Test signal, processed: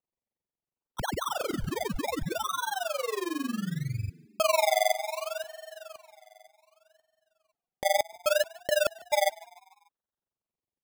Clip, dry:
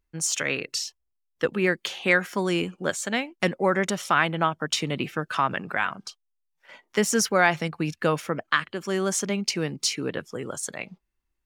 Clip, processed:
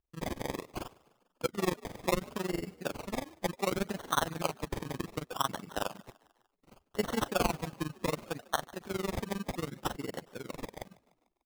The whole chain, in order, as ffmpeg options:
-filter_complex "[0:a]acrusher=samples=25:mix=1:aa=0.000001:lfo=1:lforange=15:lforate=0.67,tremolo=f=22:d=0.947,asplit=5[a][b][c][d][e];[b]adelay=148,afreqshift=55,volume=-23dB[f];[c]adelay=296,afreqshift=110,volume=-28.5dB[g];[d]adelay=444,afreqshift=165,volume=-34dB[h];[e]adelay=592,afreqshift=220,volume=-39.5dB[i];[a][f][g][h][i]amix=inputs=5:normalize=0,volume=-5.5dB"

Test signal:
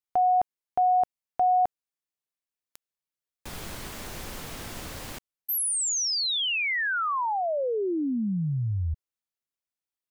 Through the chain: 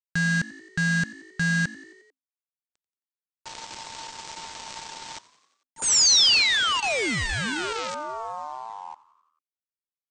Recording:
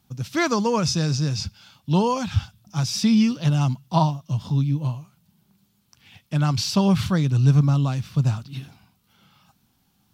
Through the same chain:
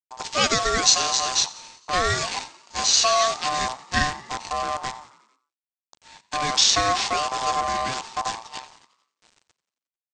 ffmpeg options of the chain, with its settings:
-filter_complex "[0:a]agate=range=-33dB:threshold=-54dB:ratio=3:release=138:detection=peak,equalizer=f=4.8k:w=0.57:g=13,bandreject=f=1.8k:w=20,acrossover=split=170|4100[a][b][c];[a]acompressor=threshold=-35dB:ratio=3:attack=5:release=39:knee=2.83:detection=peak[d];[d][b][c]amix=inputs=3:normalize=0,aresample=16000,acrusher=bits=5:dc=4:mix=0:aa=0.000001,aresample=44100,aeval=exprs='val(0)*sin(2*PI*900*n/s)':c=same,asplit=2[e][f];[f]asplit=5[g][h][i][j][k];[g]adelay=89,afreqshift=52,volume=-19.5dB[l];[h]adelay=178,afreqshift=104,volume=-23.7dB[m];[i]adelay=267,afreqshift=156,volume=-27.8dB[n];[j]adelay=356,afreqshift=208,volume=-32dB[o];[k]adelay=445,afreqshift=260,volume=-36.1dB[p];[l][m][n][o][p]amix=inputs=5:normalize=0[q];[e][q]amix=inputs=2:normalize=0"

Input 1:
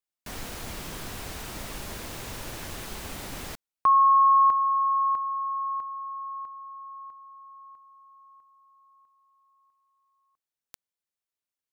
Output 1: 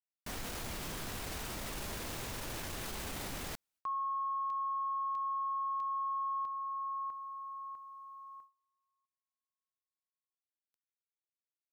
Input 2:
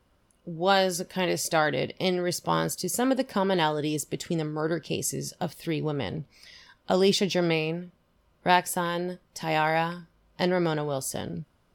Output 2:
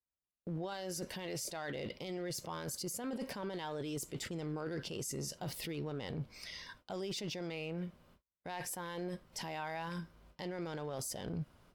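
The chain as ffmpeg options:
-af "agate=range=-42dB:threshold=-56dB:ratio=16:release=411:detection=peak,areverse,acompressor=threshold=-35dB:ratio=12:attack=0.13:release=56:knee=1:detection=peak,areverse,alimiter=level_in=12dB:limit=-24dB:level=0:latency=1:release=399,volume=-12dB,volume=3.5dB"

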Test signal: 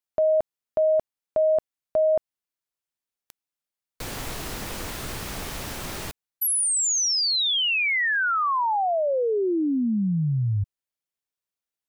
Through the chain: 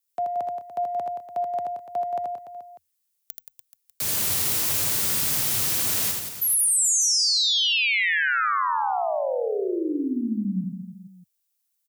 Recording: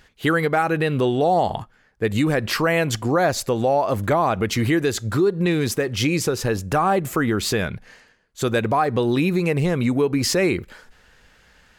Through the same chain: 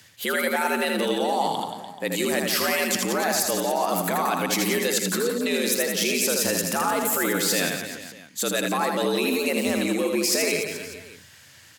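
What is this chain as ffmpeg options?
-af "crystalizer=i=5.5:c=0,areverse,acompressor=threshold=-19dB:ratio=6:attack=16:release=43:knee=1:detection=rms,areverse,afreqshift=78,aecho=1:1:80|176|291.2|429.4|595.3:0.631|0.398|0.251|0.158|0.1,volume=-5dB"

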